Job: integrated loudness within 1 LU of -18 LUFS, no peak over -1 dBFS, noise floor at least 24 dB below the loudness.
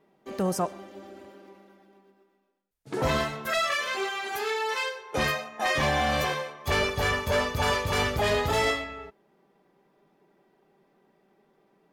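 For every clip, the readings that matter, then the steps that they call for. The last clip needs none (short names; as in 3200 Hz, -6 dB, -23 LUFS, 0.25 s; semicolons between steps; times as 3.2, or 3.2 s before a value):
loudness -27.0 LUFS; peak -15.0 dBFS; loudness target -18.0 LUFS
-> gain +9 dB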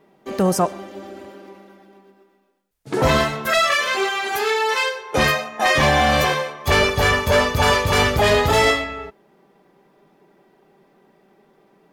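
loudness -18.0 LUFS; peak -6.0 dBFS; noise floor -59 dBFS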